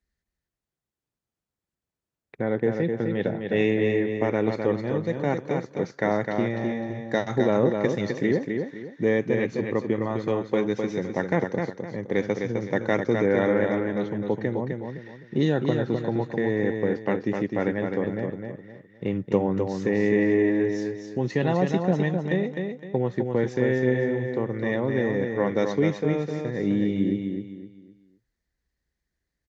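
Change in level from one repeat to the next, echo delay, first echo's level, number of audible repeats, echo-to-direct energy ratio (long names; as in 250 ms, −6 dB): −10.0 dB, 257 ms, −5.0 dB, 4, −4.5 dB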